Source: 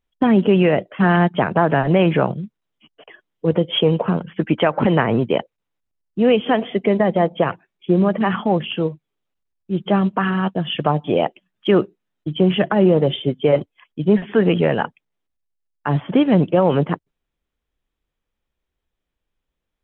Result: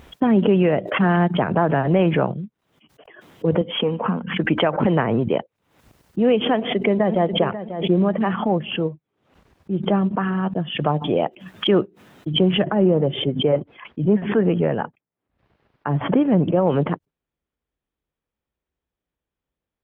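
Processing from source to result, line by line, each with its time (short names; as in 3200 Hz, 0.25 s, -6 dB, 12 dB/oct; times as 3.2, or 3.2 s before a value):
3.61–4.38 speaker cabinet 120–3200 Hz, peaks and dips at 150 Hz -8 dB, 230 Hz +7 dB, 360 Hz -9 dB, 610 Hz -7 dB, 1100 Hz +3 dB
6.55–7.35 echo throw 0.54 s, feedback 20%, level -11.5 dB
8.4–10.68 LPF 2500 Hz 6 dB/oct
12.63–16.67 air absorption 370 m
whole clip: HPF 59 Hz; high shelf 2400 Hz -8.5 dB; backwards sustainer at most 93 dB/s; gain -2 dB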